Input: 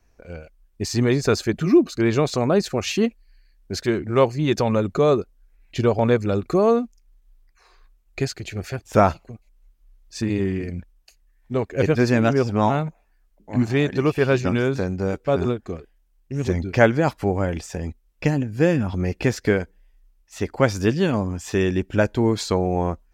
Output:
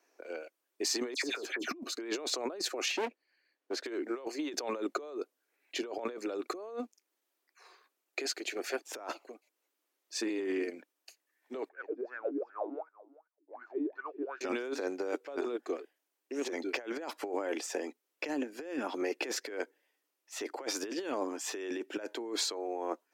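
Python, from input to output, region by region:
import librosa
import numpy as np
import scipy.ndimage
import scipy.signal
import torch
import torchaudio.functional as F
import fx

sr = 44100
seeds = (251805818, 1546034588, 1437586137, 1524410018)

y = fx.chain(x, sr, fx.doubler(ms=13.0, db=-12),
    fx.dispersion(late='lows', ms=96.0, hz=2200.0),
    fx.band_squash(depth_pct=70), at=(1.14, 1.71))
y = fx.chain(y, sr, fx.lowpass(hz=2200.0, slope=6),
    fx.overload_stage(gain_db=25.0), at=(2.88, 3.86))
y = fx.chain(y, sr, fx.wah_lfo(hz=2.7, low_hz=280.0, high_hz=1500.0, q=15.0),
    fx.air_absorb(metres=58.0),
    fx.echo_single(ms=386, db=-20.0), at=(11.69, 14.41))
y = scipy.signal.sosfilt(scipy.signal.butter(8, 290.0, 'highpass', fs=sr, output='sos'), y)
y = fx.over_compress(y, sr, threshold_db=-29.0, ratio=-1.0)
y = F.gain(torch.from_numpy(y), -7.5).numpy()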